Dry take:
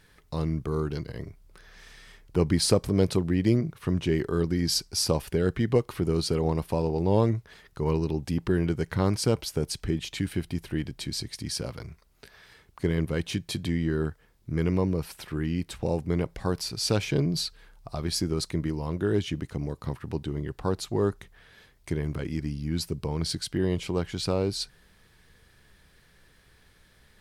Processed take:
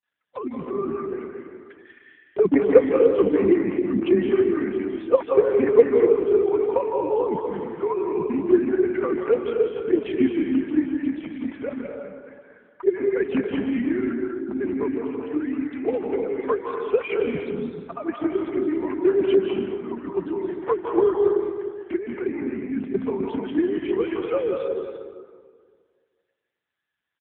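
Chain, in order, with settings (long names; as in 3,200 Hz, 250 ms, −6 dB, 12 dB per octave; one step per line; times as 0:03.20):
three sine waves on the formant tracks
noise gate with hold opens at −46 dBFS
notch filter 720 Hz, Q 12
transient designer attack +10 dB, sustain +6 dB
multiband delay without the direct sound lows, highs 30 ms, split 270 Hz
convolution reverb RT60 1.9 s, pre-delay 150 ms, DRR 1 dB
AMR narrowband 6.7 kbit/s 8,000 Hz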